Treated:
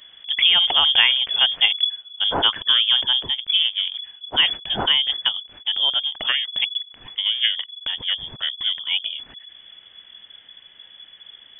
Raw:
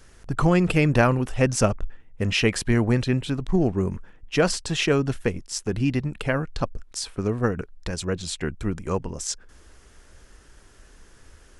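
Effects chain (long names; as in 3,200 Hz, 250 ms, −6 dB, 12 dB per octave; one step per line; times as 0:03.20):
0:03.35–0:03.95: power curve on the samples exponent 1.4
voice inversion scrambler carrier 3,400 Hz
level +2 dB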